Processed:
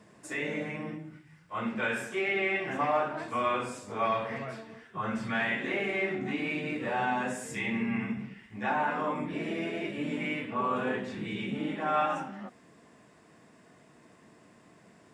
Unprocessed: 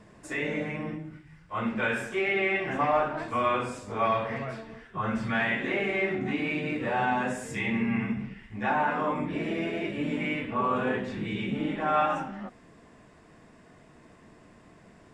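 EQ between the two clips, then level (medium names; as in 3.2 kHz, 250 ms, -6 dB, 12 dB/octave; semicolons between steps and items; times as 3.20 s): high-pass 120 Hz 12 dB/octave; treble shelf 5.6 kHz +6 dB; -3.0 dB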